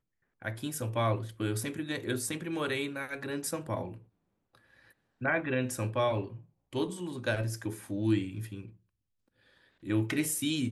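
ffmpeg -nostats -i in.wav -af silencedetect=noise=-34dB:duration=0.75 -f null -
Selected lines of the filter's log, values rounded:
silence_start: 3.88
silence_end: 5.22 | silence_duration: 1.35
silence_start: 8.60
silence_end: 9.88 | silence_duration: 1.27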